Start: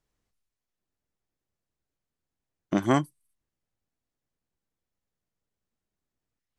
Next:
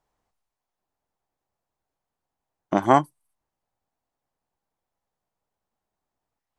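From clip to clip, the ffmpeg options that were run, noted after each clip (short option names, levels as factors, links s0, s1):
-af "equalizer=f=830:w=1.1:g=14,volume=0.891"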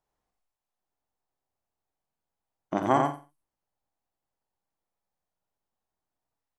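-filter_complex "[0:a]asplit=2[s0][s1];[s1]adelay=48,volume=0.316[s2];[s0][s2]amix=inputs=2:normalize=0,asplit=2[s3][s4];[s4]aecho=0:1:89|178|267:0.631|0.101|0.0162[s5];[s3][s5]amix=inputs=2:normalize=0,volume=0.447"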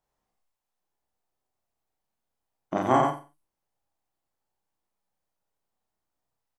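-filter_complex "[0:a]asplit=2[s0][s1];[s1]adelay=32,volume=0.75[s2];[s0][s2]amix=inputs=2:normalize=0"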